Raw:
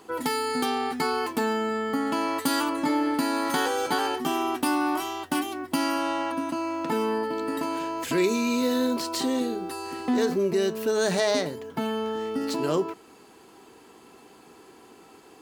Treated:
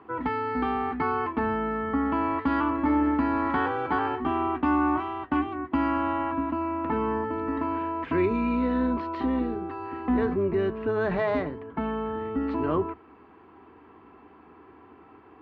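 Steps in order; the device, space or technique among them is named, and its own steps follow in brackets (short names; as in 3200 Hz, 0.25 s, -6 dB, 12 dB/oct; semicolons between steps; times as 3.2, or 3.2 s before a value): sub-octave bass pedal (octaver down 2 oct, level -6 dB; speaker cabinet 63–2300 Hz, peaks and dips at 290 Hz +4 dB, 520 Hz -4 dB, 1100 Hz +6 dB); gain -1.5 dB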